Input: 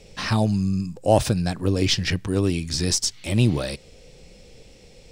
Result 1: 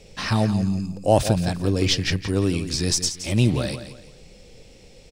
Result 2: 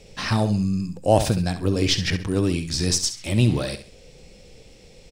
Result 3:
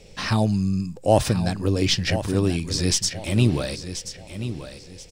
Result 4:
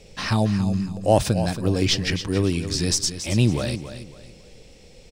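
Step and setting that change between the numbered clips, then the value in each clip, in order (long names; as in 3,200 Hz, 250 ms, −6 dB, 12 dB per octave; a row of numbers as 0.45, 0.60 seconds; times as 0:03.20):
repeating echo, delay time: 171, 67, 1,032, 277 milliseconds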